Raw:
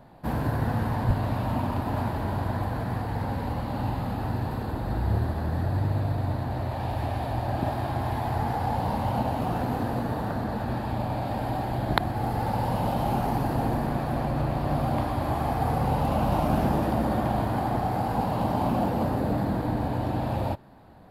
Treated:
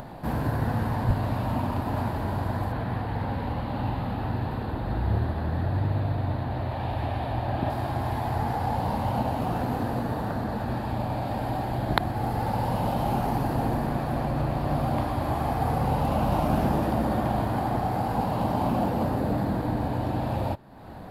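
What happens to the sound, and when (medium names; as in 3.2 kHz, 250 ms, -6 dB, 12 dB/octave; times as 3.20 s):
2.72–7.70 s: resonant high shelf 4.6 kHz -7 dB, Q 1.5
whole clip: upward compressor, threshold -30 dBFS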